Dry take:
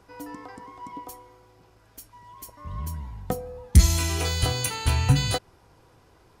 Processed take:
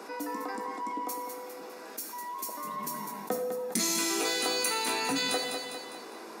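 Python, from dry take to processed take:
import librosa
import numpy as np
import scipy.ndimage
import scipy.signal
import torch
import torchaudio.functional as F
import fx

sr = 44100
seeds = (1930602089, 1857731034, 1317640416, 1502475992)

p1 = scipy.signal.sosfilt(scipy.signal.butter(8, 210.0, 'highpass', fs=sr, output='sos'), x)
p2 = fx.notch(p1, sr, hz=3100.0, q=6.9)
p3 = 10.0 ** (-20.0 / 20.0) * np.tanh(p2 / 10.0 ** (-20.0 / 20.0))
p4 = p2 + (p3 * 10.0 ** (-8.0 / 20.0))
p5 = fx.doubler(p4, sr, ms=18.0, db=-11.5)
p6 = fx.echo_feedback(p5, sr, ms=202, feedback_pct=33, wet_db=-11)
p7 = fx.rev_gated(p6, sr, seeds[0], gate_ms=250, shape='falling', drr_db=7.0)
p8 = fx.env_flatten(p7, sr, amount_pct=50)
y = p8 * 10.0 ** (-6.5 / 20.0)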